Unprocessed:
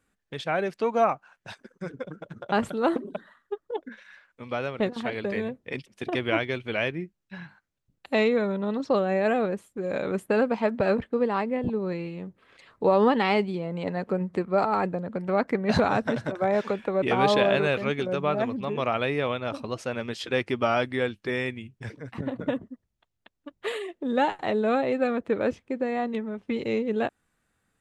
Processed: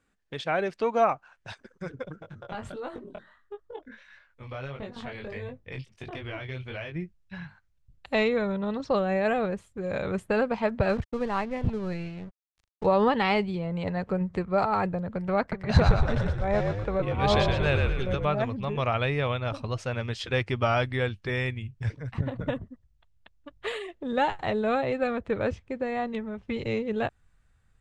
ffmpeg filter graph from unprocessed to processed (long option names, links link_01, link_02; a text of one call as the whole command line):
ffmpeg -i in.wav -filter_complex "[0:a]asettb=1/sr,asplit=3[link_01][link_02][link_03];[link_01]atrim=end=2.224[link_04];[link_02]atrim=start=2.22:end=6.96,asetpts=PTS-STARTPTS,afade=type=in:duration=0.004:curve=qsin,afade=type=out:start_time=4.736:duration=0.004:curve=qsin,acompressor=threshold=-29dB:ratio=4:attack=3.2:release=140:knee=1:detection=peak,flanger=delay=19.5:depth=3.9:speed=1.5[link_05];[link_03]atrim=start=6.956[link_06];[link_04][link_05]acrossfade=duration=0.004:curve1=hsin:curve2=qsin[link_07];[link_07][link_06]acrossfade=duration=0.004:curve1=qsin:curve2=hsin,asettb=1/sr,asplit=3[link_08][link_09][link_10];[link_08]atrim=end=10.894[link_11];[link_09]atrim=start=10.89:end=12.86,asetpts=PTS-STARTPTS,afade=type=in:duration=0.004:curve=qsin,afade=type=out:start_time=1.966:duration=0.004:curve=qsin,aeval=exprs='sgn(val(0))*max(abs(val(0))-0.00562,0)':channel_layout=same,equalizer=frequency=480:width_type=o:width=0.23:gain=-4[link_12];[link_10]atrim=start=12.856[link_13];[link_11][link_12]acrossfade=duration=0.004:curve1=hsin:curve2=qsin[link_14];[link_14][link_13]acrossfade=duration=0.004:curve1=qsin:curve2=hsin,asettb=1/sr,asplit=3[link_15][link_16][link_17];[link_15]atrim=end=15.404[link_18];[link_16]atrim=start=15.4:end=18.25,asetpts=PTS-STARTPTS,afade=type=in:duration=0.004:curve=qsin,afade=type=out:start_time=2.846:duration=0.004:curve=qsin,tremolo=f=2.6:d=0.81,asplit=6[link_19][link_20][link_21][link_22][link_23][link_24];[link_20]adelay=117,afreqshift=-51,volume=-4dB[link_25];[link_21]adelay=234,afreqshift=-102,volume=-11.7dB[link_26];[link_22]adelay=351,afreqshift=-153,volume=-19.5dB[link_27];[link_23]adelay=468,afreqshift=-204,volume=-27.2dB[link_28];[link_24]adelay=585,afreqshift=-255,volume=-35dB[link_29];[link_19][link_25][link_26][link_27][link_28][link_29]amix=inputs=6:normalize=0,atrim=end_sample=125685[link_30];[link_17]atrim=start=18.246[link_31];[link_18][link_30]acrossfade=duration=0.004:curve1=hsin:curve2=qsin[link_32];[link_32][link_31]acrossfade=duration=0.004:curve1=qsin:curve2=hsin,lowpass=8000,asubboost=boost=9.5:cutoff=85" out.wav